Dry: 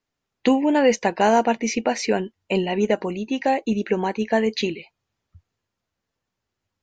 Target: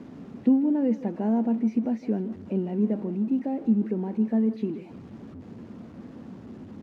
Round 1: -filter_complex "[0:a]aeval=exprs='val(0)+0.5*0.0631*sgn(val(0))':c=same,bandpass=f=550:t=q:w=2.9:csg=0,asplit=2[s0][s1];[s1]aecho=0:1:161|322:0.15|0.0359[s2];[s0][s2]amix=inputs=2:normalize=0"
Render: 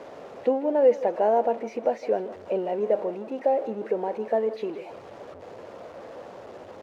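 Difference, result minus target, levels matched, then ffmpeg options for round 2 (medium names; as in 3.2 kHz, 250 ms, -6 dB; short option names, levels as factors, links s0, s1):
250 Hz band -12.0 dB
-filter_complex "[0:a]aeval=exprs='val(0)+0.5*0.0631*sgn(val(0))':c=same,bandpass=f=230:t=q:w=2.9:csg=0,asplit=2[s0][s1];[s1]aecho=0:1:161|322:0.15|0.0359[s2];[s0][s2]amix=inputs=2:normalize=0"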